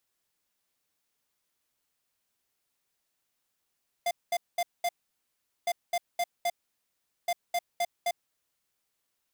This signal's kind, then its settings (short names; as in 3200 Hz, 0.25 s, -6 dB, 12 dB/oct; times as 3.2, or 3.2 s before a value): beep pattern square 697 Hz, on 0.05 s, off 0.21 s, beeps 4, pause 0.78 s, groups 3, -27.5 dBFS